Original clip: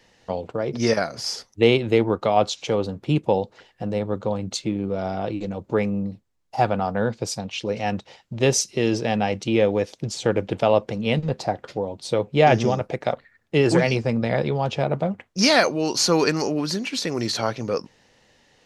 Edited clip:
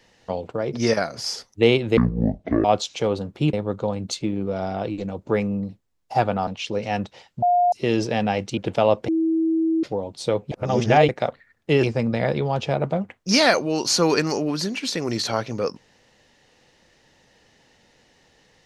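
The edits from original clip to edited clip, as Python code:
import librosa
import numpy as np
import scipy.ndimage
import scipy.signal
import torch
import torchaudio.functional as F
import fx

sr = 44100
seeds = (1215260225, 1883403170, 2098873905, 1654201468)

y = fx.edit(x, sr, fx.speed_span(start_s=1.97, length_s=0.35, speed=0.52),
    fx.cut(start_s=3.21, length_s=0.75),
    fx.cut(start_s=6.9, length_s=0.51),
    fx.bleep(start_s=8.36, length_s=0.3, hz=710.0, db=-14.5),
    fx.cut(start_s=9.51, length_s=0.91),
    fx.bleep(start_s=10.93, length_s=0.75, hz=324.0, db=-17.5),
    fx.reverse_span(start_s=12.36, length_s=0.57),
    fx.cut(start_s=13.68, length_s=0.25), tone=tone)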